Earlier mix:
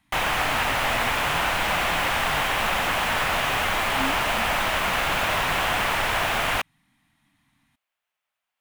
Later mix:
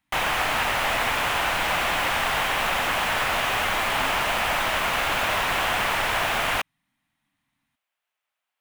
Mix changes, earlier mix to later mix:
speech -10.0 dB; master: add bass shelf 220 Hz -3.5 dB

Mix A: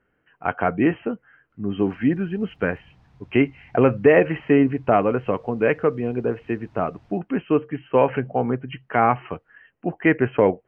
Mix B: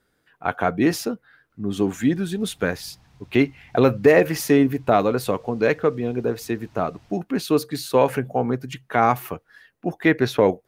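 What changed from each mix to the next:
speech: remove brick-wall FIR low-pass 3.2 kHz; background: remove low-pass 1.7 kHz 6 dB/octave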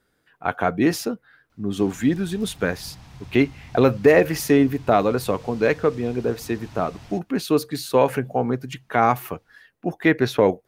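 background +10.5 dB

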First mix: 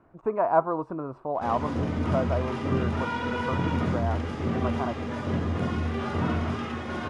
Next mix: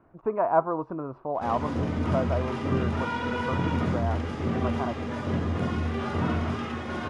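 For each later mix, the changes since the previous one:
speech: add distance through air 140 m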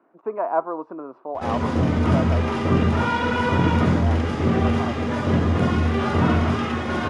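speech: add high-pass 240 Hz 24 dB/octave; background +8.0 dB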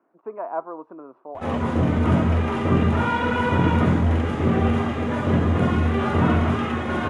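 speech -6.0 dB; master: add peaking EQ 5 kHz -10.5 dB 0.68 oct

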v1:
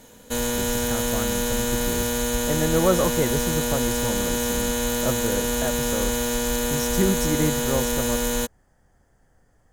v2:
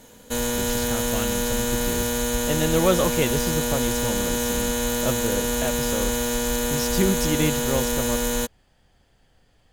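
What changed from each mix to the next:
speech: add high-order bell 3.3 kHz +15 dB 1.2 oct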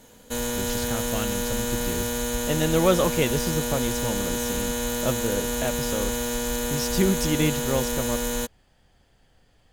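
background -3.0 dB

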